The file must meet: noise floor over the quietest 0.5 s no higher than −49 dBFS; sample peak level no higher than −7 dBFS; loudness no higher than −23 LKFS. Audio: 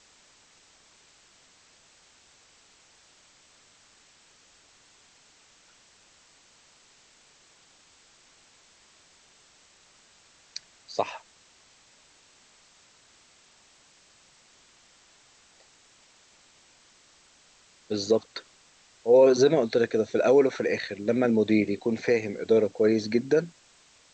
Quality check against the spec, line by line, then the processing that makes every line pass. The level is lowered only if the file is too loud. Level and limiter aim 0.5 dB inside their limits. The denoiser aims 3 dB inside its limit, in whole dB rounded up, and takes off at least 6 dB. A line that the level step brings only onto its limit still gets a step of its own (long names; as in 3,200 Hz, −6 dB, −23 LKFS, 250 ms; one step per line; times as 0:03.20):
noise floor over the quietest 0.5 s −59 dBFS: in spec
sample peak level −9.0 dBFS: in spec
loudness −24.0 LKFS: in spec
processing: no processing needed